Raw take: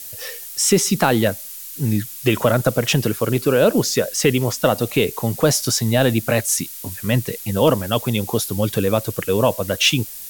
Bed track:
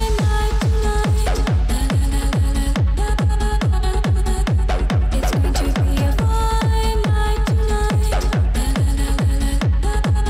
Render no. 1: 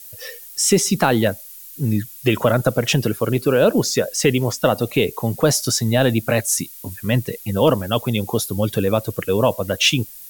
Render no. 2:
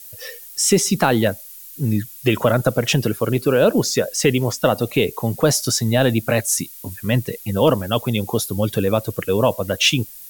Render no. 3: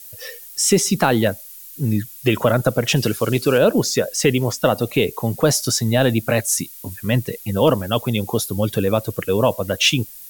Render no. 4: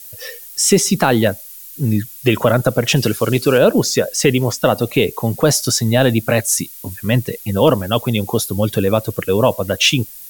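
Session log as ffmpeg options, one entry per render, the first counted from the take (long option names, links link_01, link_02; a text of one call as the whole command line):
ffmpeg -i in.wav -af "afftdn=noise_reduction=8:noise_floor=-35" out.wav
ffmpeg -i in.wav -af anull out.wav
ffmpeg -i in.wav -filter_complex "[0:a]asettb=1/sr,asplit=3[link_01][link_02][link_03];[link_01]atrim=end=2.964[link_04];[link_02]atrim=start=2.96:end=3.58,asetpts=PTS-STARTPTS,afade=type=in:duration=0.004:curve=qsin,afade=type=out:start_time=0.616:duration=0.004:curve=qsin,equalizer=frequency=5100:width=0.52:gain=8.5[link_05];[link_03]atrim=start=3.576[link_06];[link_04][link_05]acrossfade=duration=0.004:curve1=hsin:curve2=qsin[link_07];[link_07][link_06]acrossfade=duration=0.004:curve1=qsin:curve2=hsin" out.wav
ffmpeg -i in.wav -af "volume=3dB,alimiter=limit=-1dB:level=0:latency=1" out.wav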